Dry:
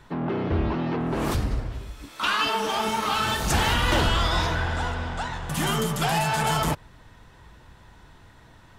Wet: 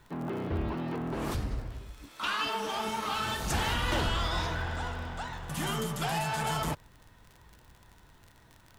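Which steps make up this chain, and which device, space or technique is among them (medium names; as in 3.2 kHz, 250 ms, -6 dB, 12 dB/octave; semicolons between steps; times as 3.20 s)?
vinyl LP (crackle 49 per s -33 dBFS; white noise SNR 42 dB); trim -7.5 dB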